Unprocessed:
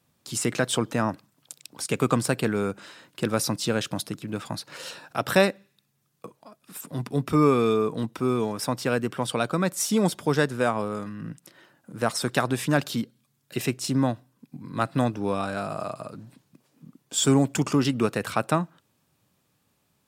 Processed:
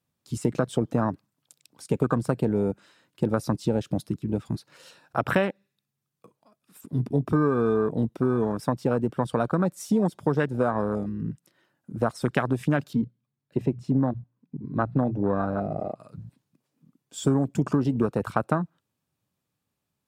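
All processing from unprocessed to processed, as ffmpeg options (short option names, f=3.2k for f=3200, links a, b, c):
-filter_complex "[0:a]asettb=1/sr,asplit=3[a][b][c];[a]atrim=end=12.934[d];[b]atrim=start=12.93:end=16,asetpts=PTS-STARTPTS,afade=t=in:d=0.004:c=qsin,afade=t=out:st=3.066:d=0.004:c=qsin,lowpass=f=1.4k:p=1,bandreject=f=60:t=h:w=6,bandreject=f=120:t=h:w=6,bandreject=f=180:t=h:w=6[e];[c]atrim=start=15.996[f];[d][e]acrossfade=d=0.004:c1=hsin:c2=qsin[g];[g][f]acrossfade=d=0.004:c1=qsin:c2=hsin,afwtdn=0.0447,lowshelf=f=170:g=3.5,acompressor=threshold=-23dB:ratio=5,volume=4dB"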